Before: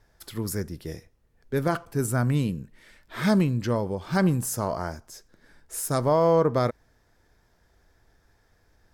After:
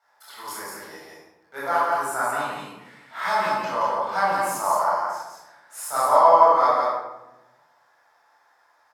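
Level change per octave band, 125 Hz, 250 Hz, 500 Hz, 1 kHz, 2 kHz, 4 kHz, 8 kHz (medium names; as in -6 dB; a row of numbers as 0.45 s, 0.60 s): under -20 dB, -14.5 dB, +2.0 dB, +13.0 dB, +7.0 dB, +2.0 dB, -0.5 dB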